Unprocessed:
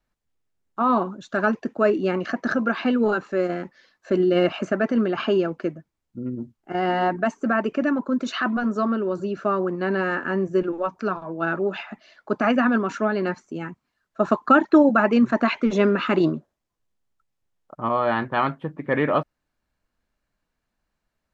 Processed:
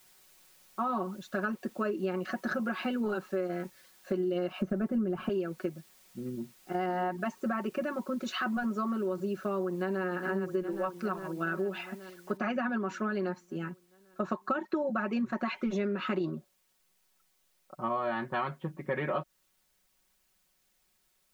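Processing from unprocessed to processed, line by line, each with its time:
0:04.61–0:05.29: spectral tilt −4 dB per octave
0:09.62–0:10.04: delay throw 410 ms, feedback 70%, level −8 dB
0:12.37: noise floor change −55 dB −67 dB
whole clip: comb filter 5.4 ms, depth 76%; downward compressor 6 to 1, threshold −20 dBFS; level −8 dB

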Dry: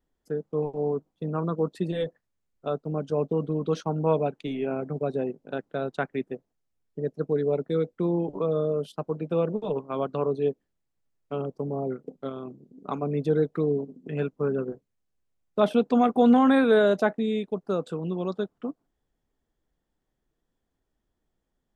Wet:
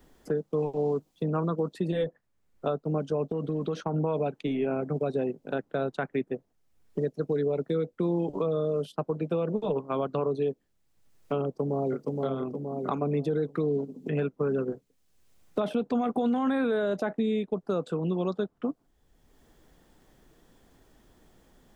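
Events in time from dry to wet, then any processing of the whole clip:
0:03.29–0:03.94: downward compressor, threshold −28 dBFS
0:11.45–0:12.14: delay throw 470 ms, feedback 45%, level −4.5 dB
whole clip: brickwall limiter −19 dBFS; multiband upward and downward compressor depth 70%

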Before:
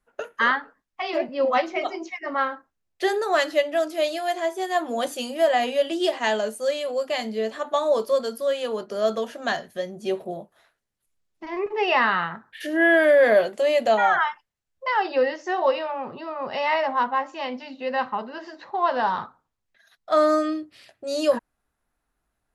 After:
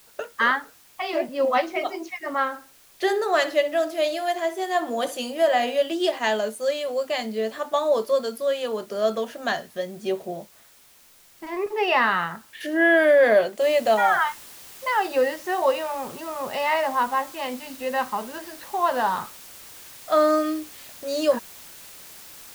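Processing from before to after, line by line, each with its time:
0:02.48–0:05.81: feedback echo with a low-pass in the loop 63 ms, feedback 31%, low-pass 3,600 Hz, level −13 dB
0:13.61: noise floor change −54 dB −44 dB

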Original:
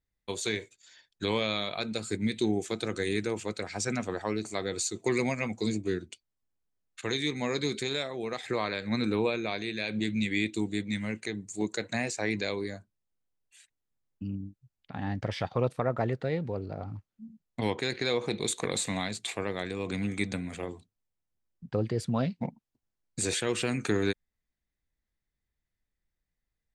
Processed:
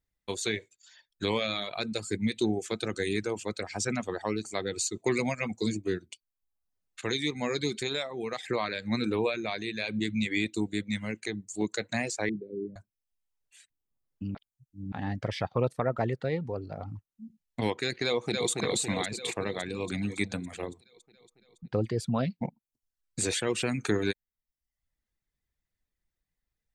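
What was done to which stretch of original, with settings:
0:12.29–0:12.76: elliptic band-pass filter 120–410 Hz
0:14.35–0:14.92: reverse
0:18.05–0:18.49: delay throw 280 ms, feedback 70%, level −3 dB
whole clip: reverb reduction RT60 0.64 s; level +1 dB

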